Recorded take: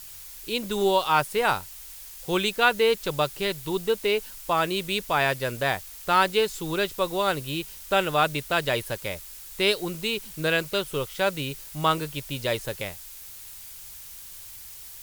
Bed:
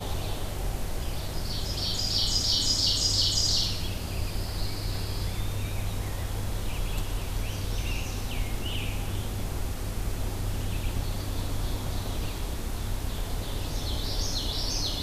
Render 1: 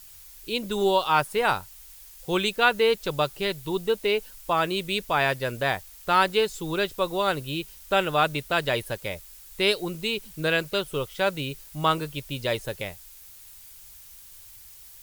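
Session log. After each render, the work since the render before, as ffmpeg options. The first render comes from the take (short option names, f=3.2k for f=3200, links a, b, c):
-af "afftdn=nr=6:nf=-43"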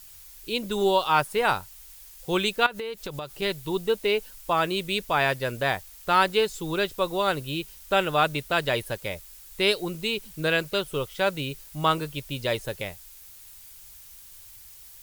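-filter_complex "[0:a]asettb=1/sr,asplit=3[a][b][c];[a]atrim=end=2.664[d];[b]atrim=start=2.66:end=3.42,asetpts=PTS-STARTPTS,afade=t=in:d=0.004:c=qsin,afade=t=out:st=0.756:d=0.004:c=qsin,acompressor=threshold=-29dB:ratio=16:attack=3.2:release=140:knee=1:detection=peak[e];[c]atrim=start=3.416[f];[d][e]acrossfade=d=0.004:c1=hsin:c2=qsin[g];[g][f]acrossfade=d=0.004:c1=qsin:c2=hsin"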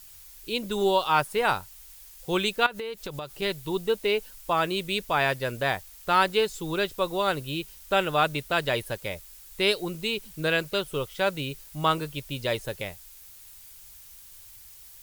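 -af "volume=-1dB"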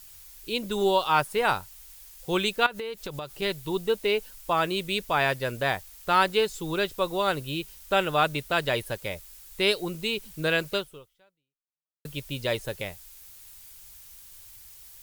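-filter_complex "[0:a]asplit=2[a][b];[a]atrim=end=12.05,asetpts=PTS-STARTPTS,afade=t=out:st=10.76:d=1.29:c=exp[c];[b]atrim=start=12.05,asetpts=PTS-STARTPTS,afade=t=in:d=0.004:c=hsin[d];[c][d]concat=n=2:v=0:a=1"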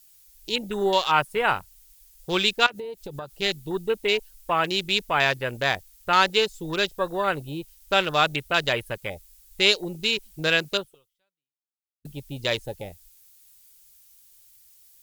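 -af "afwtdn=0.0178,highshelf=f=2.4k:g=10.5"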